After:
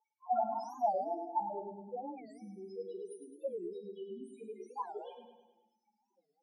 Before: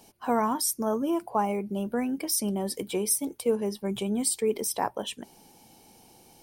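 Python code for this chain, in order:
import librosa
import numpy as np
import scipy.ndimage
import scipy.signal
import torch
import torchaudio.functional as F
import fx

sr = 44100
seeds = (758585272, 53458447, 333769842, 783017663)

p1 = scipy.signal.sosfilt(scipy.signal.butter(2, 8700.0, 'lowpass', fs=sr, output='sos'), x)
p2 = fx.tilt_shelf(p1, sr, db=-7.0, hz=1100.0)
p3 = p2 + 0.39 * np.pad(p2, (int(5.7 * sr / 1000.0), 0))[:len(p2)]
p4 = fx.level_steps(p3, sr, step_db=10)
p5 = p3 + (p4 * 10.0 ** (-3.0 / 20.0))
p6 = fx.env_flanger(p5, sr, rest_ms=10.8, full_db=-18.0)
p7 = fx.spec_topn(p6, sr, count=1)
p8 = fx.auto_wah(p7, sr, base_hz=460.0, top_hz=4400.0, q=3.9, full_db=-21.5, direction='up')
p9 = p8 + fx.echo_feedback(p8, sr, ms=104, feedback_pct=53, wet_db=-7.5, dry=0)
p10 = fx.room_shoebox(p9, sr, seeds[0], volume_m3=840.0, walls='furnished', distance_m=1.6)
p11 = fx.record_warp(p10, sr, rpm=45.0, depth_cents=250.0)
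y = p11 * 10.0 ** (8.0 / 20.0)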